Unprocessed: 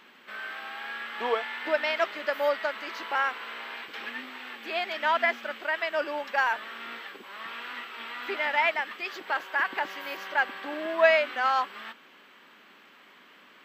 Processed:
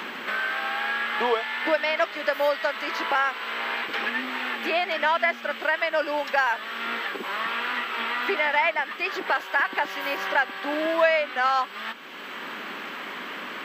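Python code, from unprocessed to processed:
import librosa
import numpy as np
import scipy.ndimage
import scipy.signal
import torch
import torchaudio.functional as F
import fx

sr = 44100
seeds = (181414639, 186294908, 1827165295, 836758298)

y = fx.band_squash(x, sr, depth_pct=70)
y = y * librosa.db_to_amplitude(4.0)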